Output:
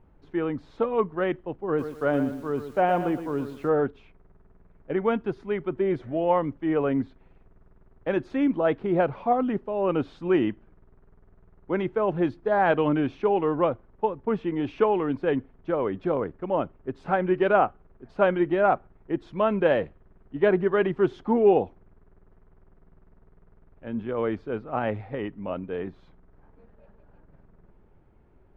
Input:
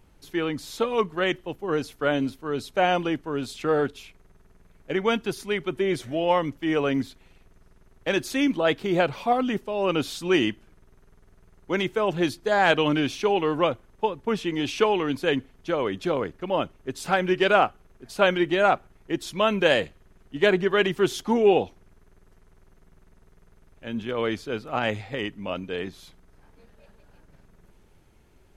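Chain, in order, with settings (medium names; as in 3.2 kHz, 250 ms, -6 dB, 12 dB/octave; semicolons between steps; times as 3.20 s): low-pass 1.3 kHz 12 dB/octave; 1.67–3.69 s: bit-crushed delay 118 ms, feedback 35%, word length 8-bit, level -10 dB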